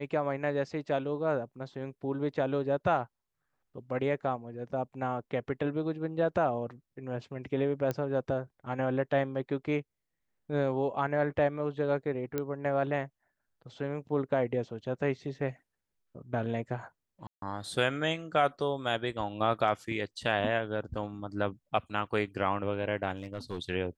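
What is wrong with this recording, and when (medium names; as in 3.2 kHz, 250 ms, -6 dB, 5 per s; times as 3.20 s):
7.91 s: pop -19 dBFS
12.38 s: pop -18 dBFS
17.27–17.42 s: dropout 152 ms
23.17–23.59 s: clipped -31 dBFS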